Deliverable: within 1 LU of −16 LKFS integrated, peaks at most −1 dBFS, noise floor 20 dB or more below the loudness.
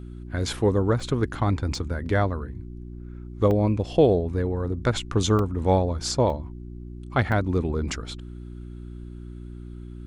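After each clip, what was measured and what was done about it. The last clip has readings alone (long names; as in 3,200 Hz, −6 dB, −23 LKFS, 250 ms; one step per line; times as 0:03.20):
number of dropouts 6; longest dropout 2.3 ms; mains hum 60 Hz; hum harmonics up to 360 Hz; level of the hum −36 dBFS; integrated loudness −24.5 LKFS; sample peak −6.5 dBFS; target loudness −16.0 LKFS
→ repair the gap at 0:01.00/0:01.75/0:03.51/0:05.39/0:06.30/0:07.32, 2.3 ms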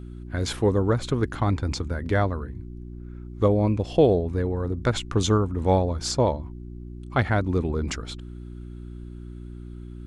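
number of dropouts 0; mains hum 60 Hz; hum harmonics up to 360 Hz; level of the hum −36 dBFS
→ hum removal 60 Hz, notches 6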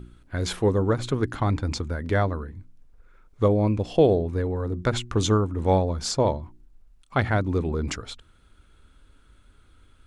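mains hum none found; integrated loudness −25.0 LKFS; sample peak −7.0 dBFS; target loudness −16.0 LKFS
→ level +9 dB
brickwall limiter −1 dBFS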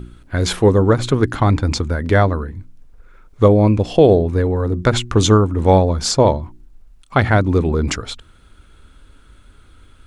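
integrated loudness −16.0 LKFS; sample peak −1.0 dBFS; background noise floor −48 dBFS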